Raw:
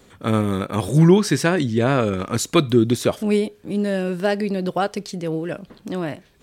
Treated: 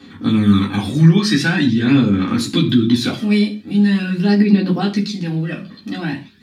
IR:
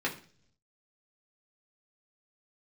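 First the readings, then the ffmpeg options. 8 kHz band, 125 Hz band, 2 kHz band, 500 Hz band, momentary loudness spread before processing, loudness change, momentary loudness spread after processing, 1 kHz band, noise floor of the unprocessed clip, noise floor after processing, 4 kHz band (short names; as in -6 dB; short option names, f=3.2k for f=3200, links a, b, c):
-2.5 dB, +4.5 dB, +5.0 dB, -5.0 dB, 12 LU, +4.5 dB, 12 LU, -2.5 dB, -53 dBFS, -41 dBFS, +7.0 dB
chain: -filter_complex "[0:a]aphaser=in_gain=1:out_gain=1:delay=1.7:decay=0.56:speed=0.44:type=sinusoidal,alimiter=limit=-11.5dB:level=0:latency=1:release=49,equalizer=f=250:t=o:w=1:g=8,equalizer=f=500:t=o:w=1:g=-12,equalizer=f=4k:t=o:w=1:g=10[a];[1:a]atrim=start_sample=2205,afade=t=out:st=0.21:d=0.01,atrim=end_sample=9702[b];[a][b]afir=irnorm=-1:irlink=0,volume=-4dB"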